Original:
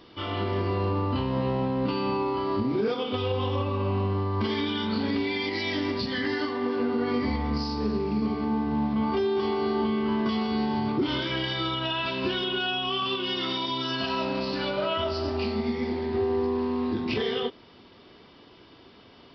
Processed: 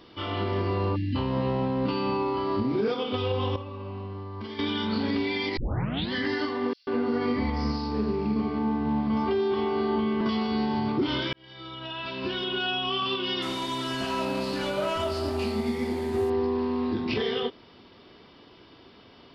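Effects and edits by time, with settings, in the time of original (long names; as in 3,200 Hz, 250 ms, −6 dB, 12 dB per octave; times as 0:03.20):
0:00.96–0:01.16: time-frequency box erased 360–1,600 Hz
0:03.56–0:04.59: clip gain −10 dB
0:05.57: tape start 0.56 s
0:06.73–0:10.21: multiband delay without the direct sound highs, lows 140 ms, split 4,900 Hz
0:11.33–0:12.70: fade in
0:13.42–0:16.30: linear delta modulator 64 kbit/s, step −44 dBFS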